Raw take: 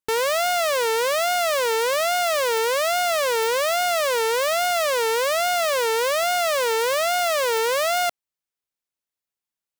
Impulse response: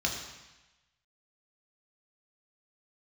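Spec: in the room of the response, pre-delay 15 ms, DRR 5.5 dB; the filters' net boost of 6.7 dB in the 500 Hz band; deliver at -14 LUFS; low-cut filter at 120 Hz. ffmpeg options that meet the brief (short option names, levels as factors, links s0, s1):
-filter_complex "[0:a]highpass=120,equalizer=f=500:t=o:g=8,asplit=2[s0][s1];[1:a]atrim=start_sample=2205,adelay=15[s2];[s1][s2]afir=irnorm=-1:irlink=0,volume=0.224[s3];[s0][s3]amix=inputs=2:normalize=0,volume=1.26"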